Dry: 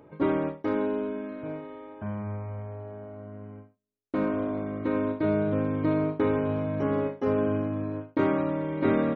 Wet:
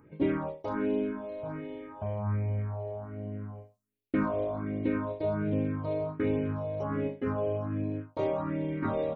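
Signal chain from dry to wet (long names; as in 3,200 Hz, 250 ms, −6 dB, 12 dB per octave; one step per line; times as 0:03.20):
all-pass phaser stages 4, 1.3 Hz, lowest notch 230–1,300 Hz
speech leveller within 5 dB 2 s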